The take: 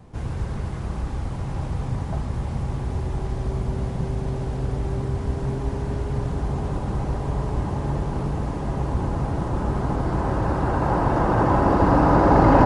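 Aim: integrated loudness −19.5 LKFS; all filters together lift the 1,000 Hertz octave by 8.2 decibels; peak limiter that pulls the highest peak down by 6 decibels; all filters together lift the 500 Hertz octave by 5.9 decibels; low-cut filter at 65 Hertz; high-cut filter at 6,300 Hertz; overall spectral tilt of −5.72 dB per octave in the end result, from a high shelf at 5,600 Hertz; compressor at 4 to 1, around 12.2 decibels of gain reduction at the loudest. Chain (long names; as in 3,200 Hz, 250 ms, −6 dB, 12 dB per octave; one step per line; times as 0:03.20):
high-pass filter 65 Hz
low-pass filter 6,300 Hz
parametric band 500 Hz +5 dB
parametric band 1,000 Hz +8.5 dB
high-shelf EQ 5,600 Hz −6.5 dB
downward compressor 4 to 1, threshold −20 dBFS
level +6.5 dB
brickwall limiter −8 dBFS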